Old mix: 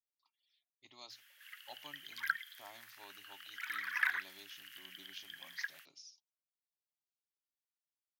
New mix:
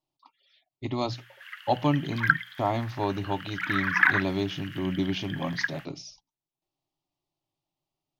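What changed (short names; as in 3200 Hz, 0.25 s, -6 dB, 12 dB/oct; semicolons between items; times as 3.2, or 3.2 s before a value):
speech +8.5 dB; master: remove differentiator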